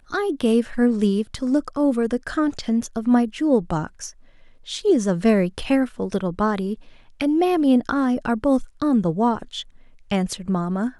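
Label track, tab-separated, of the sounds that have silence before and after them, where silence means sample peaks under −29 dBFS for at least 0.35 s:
4.690000	6.740000	sound
7.210000	9.610000	sound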